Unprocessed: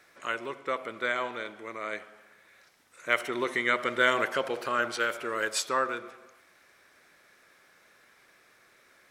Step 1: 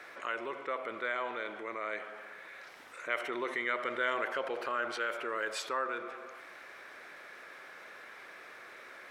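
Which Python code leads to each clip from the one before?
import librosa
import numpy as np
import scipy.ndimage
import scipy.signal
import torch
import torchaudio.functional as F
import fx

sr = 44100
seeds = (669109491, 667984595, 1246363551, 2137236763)

y = fx.bass_treble(x, sr, bass_db=-12, treble_db=-12)
y = fx.env_flatten(y, sr, amount_pct=50)
y = F.gain(torch.from_numpy(y), -8.5).numpy()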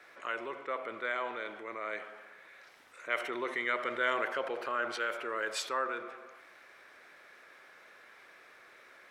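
y = fx.band_widen(x, sr, depth_pct=40)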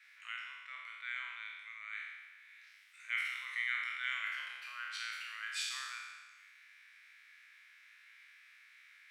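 y = fx.spec_trails(x, sr, decay_s=1.36)
y = fx.ladder_highpass(y, sr, hz=1800.0, resonance_pct=40)
y = F.gain(torch.from_numpy(y), 1.0).numpy()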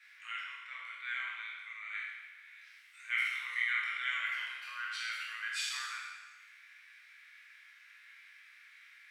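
y = fx.room_shoebox(x, sr, seeds[0], volume_m3=32.0, walls='mixed', distance_m=0.51)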